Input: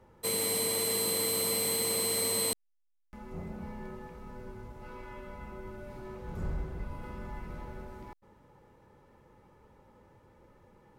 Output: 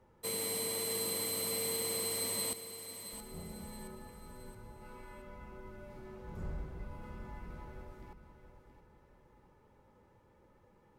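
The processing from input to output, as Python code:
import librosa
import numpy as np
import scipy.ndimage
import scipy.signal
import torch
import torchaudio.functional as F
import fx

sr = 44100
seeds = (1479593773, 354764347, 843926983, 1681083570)

y = fx.echo_feedback(x, sr, ms=672, feedback_pct=40, wet_db=-11)
y = y * 10.0 ** (-6.0 / 20.0)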